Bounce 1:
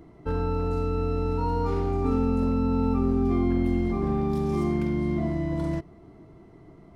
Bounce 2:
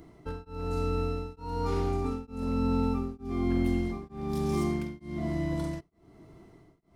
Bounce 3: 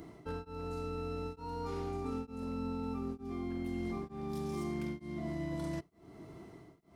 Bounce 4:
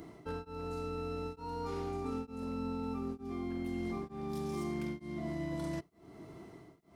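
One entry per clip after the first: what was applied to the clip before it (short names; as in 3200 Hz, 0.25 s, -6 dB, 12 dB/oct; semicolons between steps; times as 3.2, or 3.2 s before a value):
high shelf 3000 Hz +11 dB; beating tremolo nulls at 1.1 Hz; gain -2.5 dB
reverse; compressor 6:1, threshold -37 dBFS, peak gain reduction 14 dB; reverse; HPF 100 Hz 6 dB/oct; gain +3 dB
low shelf 130 Hz -3.5 dB; gain +1 dB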